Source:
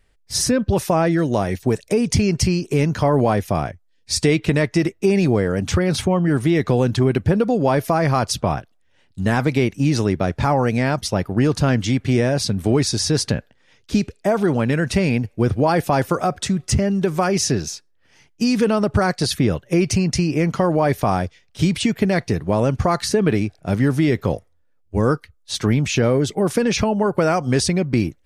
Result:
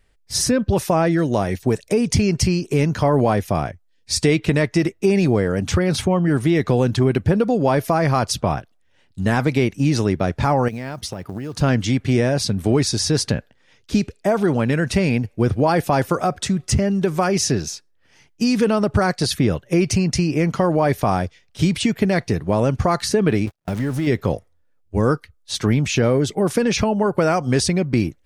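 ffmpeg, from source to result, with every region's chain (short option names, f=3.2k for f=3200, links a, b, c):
-filter_complex "[0:a]asettb=1/sr,asplit=3[a][b][c];[a]atrim=end=10.684[d];[b]atrim=start=10.68:end=11.61,asetpts=PTS-STARTPTS,afade=t=in:d=0.004:c=qsin,afade=t=out:st=0.926:d=0.004:c=qsin,highpass=40,acompressor=threshold=-24dB:ratio=12:attack=3.2:release=140:knee=1:detection=peak,acrusher=bits=8:mode=log:mix=0:aa=0.000001[e];[c]atrim=start=11.606[f];[d][e]acrossfade=d=0.004:c1=hsin:c2=qsin[g];[g][f]acrossfade=d=0.004:c1=qsin:c2=hsin,asettb=1/sr,asplit=3[h][i][j];[h]atrim=end=23.464[k];[i]atrim=start=23.46:end=24.07,asetpts=PTS-STARTPTS,afade=t=in:d=0.004:c=qsin,afade=t=out:st=0.606:d=0.004:c=qsin,aeval=exprs='val(0)+0.5*0.0422*sgn(val(0))':c=same,agate=range=-50dB:threshold=-26dB:ratio=16:release=100:detection=peak,acompressor=threshold=-21dB:ratio=2.5:attack=3.2:release=140:knee=1:detection=peak[l];[j]atrim=start=24.066[m];[k][l]acrossfade=d=0.004:c1=hsin:c2=qsin[n];[n][m]acrossfade=d=0.004:c1=qsin:c2=hsin"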